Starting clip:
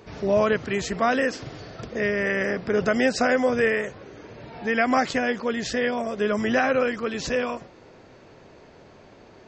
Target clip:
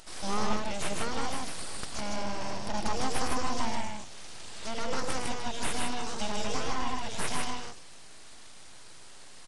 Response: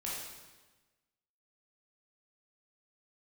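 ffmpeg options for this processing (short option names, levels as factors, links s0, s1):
-filter_complex "[0:a]acrossover=split=220|810[s0][s1][s2];[s2]acompressor=threshold=0.01:ratio=6[s3];[s0][s1][s3]amix=inputs=3:normalize=0,aexciter=amount=8.8:drive=6.8:freq=2800,aeval=exprs='abs(val(0))':c=same,aecho=1:1:110.8|154.5:0.355|0.794,aresample=22050,aresample=44100,volume=0.447"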